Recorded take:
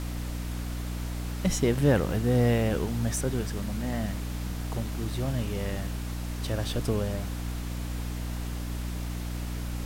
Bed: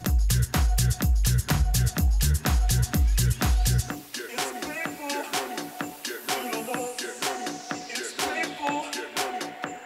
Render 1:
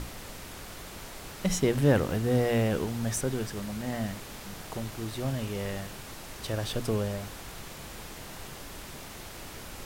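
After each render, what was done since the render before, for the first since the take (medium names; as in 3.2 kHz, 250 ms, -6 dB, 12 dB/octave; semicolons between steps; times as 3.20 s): hum notches 60/120/180/240/300 Hz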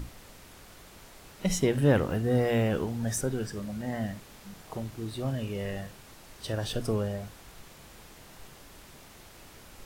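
noise print and reduce 8 dB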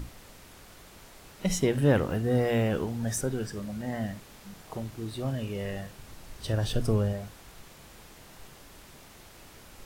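5.98–7.13 s: bass shelf 140 Hz +9.5 dB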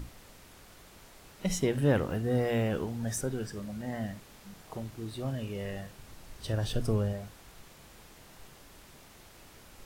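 trim -3 dB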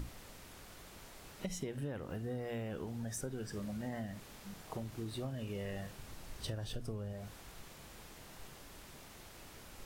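compression 16:1, threshold -37 dBFS, peak gain reduction 18 dB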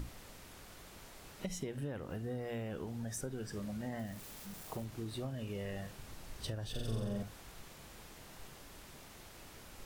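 3.99–4.86 s: zero-crossing glitches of -46.5 dBFS; 6.70–7.23 s: flutter echo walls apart 7.6 m, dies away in 1.4 s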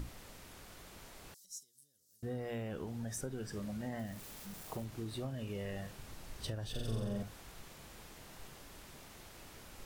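1.34–2.23 s: inverse Chebyshev high-pass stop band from 2.7 kHz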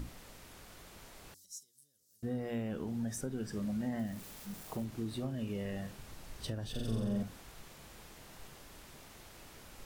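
dynamic bell 230 Hz, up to +7 dB, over -55 dBFS, Q 1.6; de-hum 92.45 Hz, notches 4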